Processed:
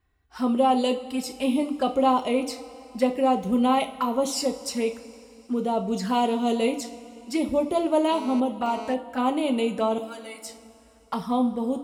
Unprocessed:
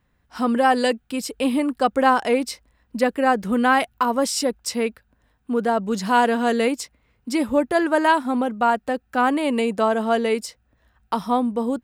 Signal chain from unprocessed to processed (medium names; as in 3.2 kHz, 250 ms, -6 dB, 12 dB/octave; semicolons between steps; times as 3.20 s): 9.98–10.46 s: pre-emphasis filter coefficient 0.8; touch-sensitive flanger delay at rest 2.7 ms, full sweep at -18.5 dBFS; two-slope reverb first 0.32 s, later 3.1 s, from -18 dB, DRR 4.5 dB; 8.12–8.94 s: mobile phone buzz -36 dBFS; trim -2.5 dB